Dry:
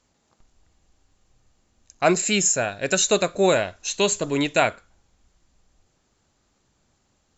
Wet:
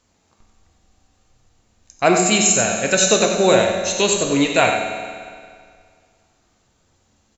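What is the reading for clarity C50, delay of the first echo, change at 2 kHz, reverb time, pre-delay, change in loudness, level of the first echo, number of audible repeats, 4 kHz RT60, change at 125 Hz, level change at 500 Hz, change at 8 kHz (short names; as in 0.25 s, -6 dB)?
3.0 dB, 93 ms, +5.0 dB, 2.0 s, 4 ms, +5.0 dB, -7.5 dB, 1, 1.8 s, +4.5 dB, +5.0 dB, n/a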